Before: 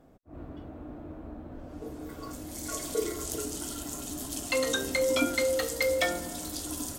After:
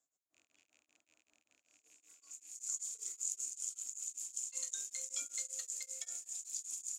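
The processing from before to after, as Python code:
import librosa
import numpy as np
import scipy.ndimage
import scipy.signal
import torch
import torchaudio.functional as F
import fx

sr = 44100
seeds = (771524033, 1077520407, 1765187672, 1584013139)

y = fx.rattle_buzz(x, sr, strikes_db=-44.0, level_db=-36.0)
y = fx.bandpass_q(y, sr, hz=7000.0, q=11.0)
y = y * np.abs(np.cos(np.pi * 5.2 * np.arange(len(y)) / sr))
y = y * 10.0 ** (8.5 / 20.0)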